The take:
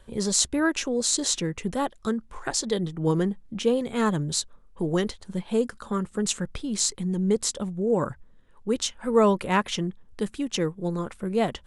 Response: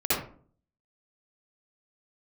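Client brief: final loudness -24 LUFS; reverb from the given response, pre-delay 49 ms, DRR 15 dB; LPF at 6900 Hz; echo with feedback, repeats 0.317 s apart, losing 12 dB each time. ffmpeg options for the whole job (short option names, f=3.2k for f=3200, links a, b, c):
-filter_complex "[0:a]lowpass=6.9k,aecho=1:1:317|634|951:0.251|0.0628|0.0157,asplit=2[a][b];[1:a]atrim=start_sample=2205,adelay=49[c];[b][c]afir=irnorm=-1:irlink=0,volume=-27dB[d];[a][d]amix=inputs=2:normalize=0,volume=2.5dB"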